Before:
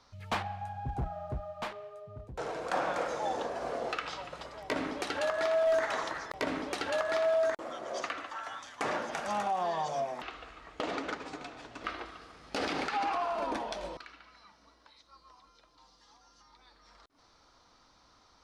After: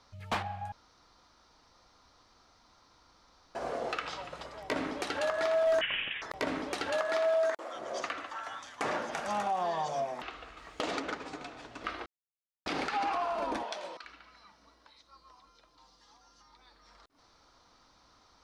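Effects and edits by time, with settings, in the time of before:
0.72–3.55 room tone
5.81–6.22 inverted band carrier 3600 Hz
6.97–7.74 HPF 150 Hz -> 460 Hz
10.57–11 high shelf 4200 Hz +9.5 dB
12.06–12.66 mute
13.63–14.04 weighting filter A

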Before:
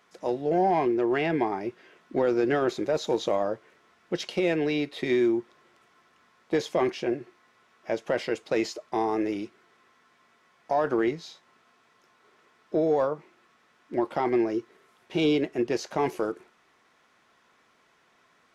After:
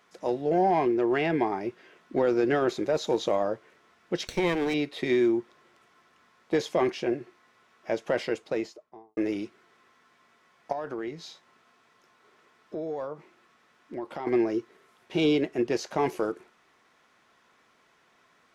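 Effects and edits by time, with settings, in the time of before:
4.27–4.74 minimum comb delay 0.5 ms
8.18–9.17 studio fade out
10.72–14.27 compressor 2:1, threshold -38 dBFS

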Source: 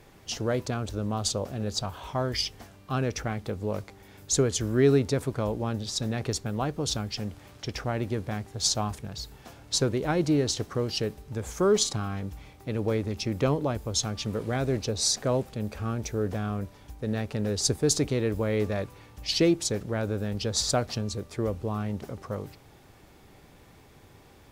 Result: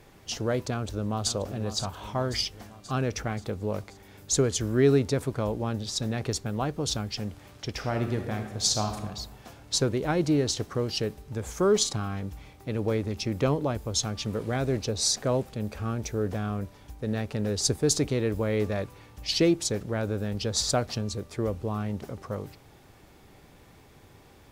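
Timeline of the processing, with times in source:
0.73–1.34 echo throw 0.53 s, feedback 60%, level -11 dB
7.72–9 reverb throw, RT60 1.2 s, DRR 5 dB

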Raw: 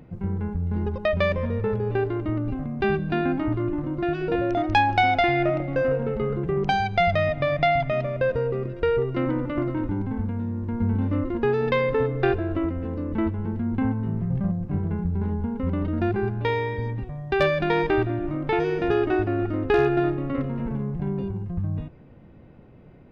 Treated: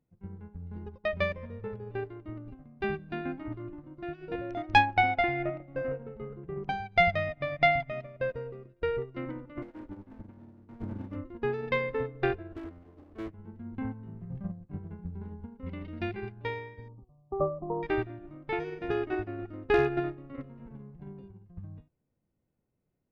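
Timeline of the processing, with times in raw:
4.85–6.92 high shelf 3400 Hz -11 dB
9.62–11.16 minimum comb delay 3.4 ms
12.52–13.34 minimum comb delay 2.8 ms
15.66–16.32 band shelf 3300 Hz +10 dB
16.88–17.83 brick-wall FIR low-pass 1300 Hz
whole clip: dynamic EQ 2100 Hz, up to +5 dB, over -45 dBFS, Q 3.3; upward expander 2.5:1, over -36 dBFS

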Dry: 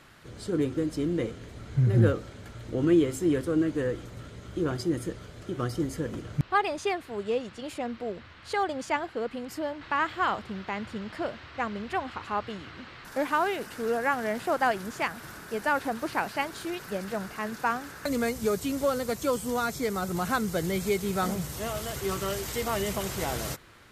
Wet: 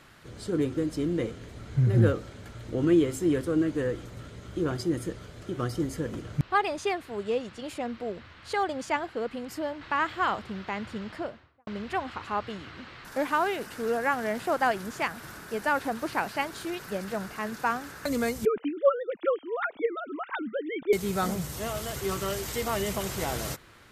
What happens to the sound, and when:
11.04–11.67 studio fade out
18.45–20.93 sine-wave speech

